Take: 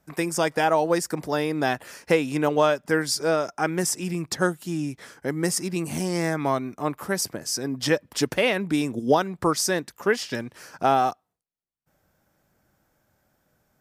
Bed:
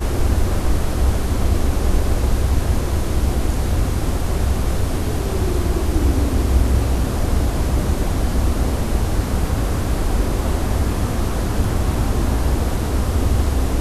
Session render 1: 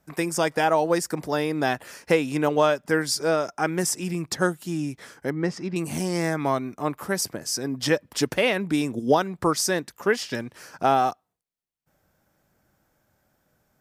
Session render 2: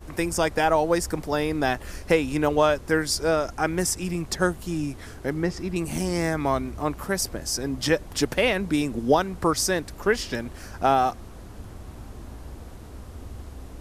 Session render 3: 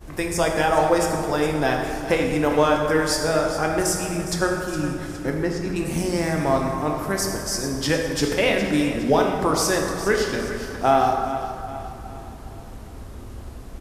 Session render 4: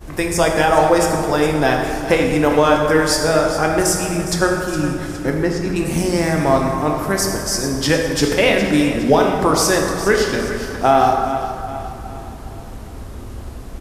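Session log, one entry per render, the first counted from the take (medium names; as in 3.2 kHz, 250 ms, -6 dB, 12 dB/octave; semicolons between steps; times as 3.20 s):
5.30–5.76 s: distance through air 210 m
add bed -21.5 dB
feedback delay 412 ms, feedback 45%, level -12.5 dB; plate-style reverb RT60 2 s, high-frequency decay 0.6×, pre-delay 0 ms, DRR 1 dB
trim +5.5 dB; peak limiter -2 dBFS, peak gain reduction 2.5 dB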